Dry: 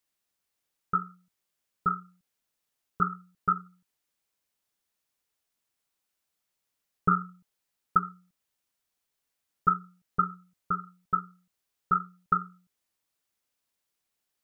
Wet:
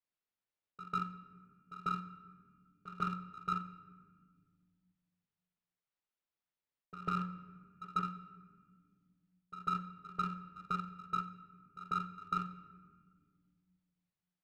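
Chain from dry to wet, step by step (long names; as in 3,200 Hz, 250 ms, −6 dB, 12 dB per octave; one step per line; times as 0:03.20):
hum removal 100.5 Hz, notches 9
reversed playback
downward compressor 6 to 1, threshold −34 dBFS, peak gain reduction 16.5 dB
reversed playback
high-frequency loss of the air 220 metres
echo ahead of the sound 146 ms −14.5 dB
power curve on the samples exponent 1.4
on a send at −11 dB: convolution reverb RT60 1.3 s, pre-delay 5 ms
on the sum: multiband upward and downward compressor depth 40%
level +5 dB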